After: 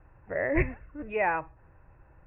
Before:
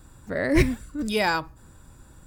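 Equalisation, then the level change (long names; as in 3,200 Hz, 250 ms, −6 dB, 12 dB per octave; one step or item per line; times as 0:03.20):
Chebyshev low-pass with heavy ripple 2,700 Hz, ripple 6 dB
high-frequency loss of the air 90 metres
parametric band 230 Hz −12.5 dB 0.57 octaves
0.0 dB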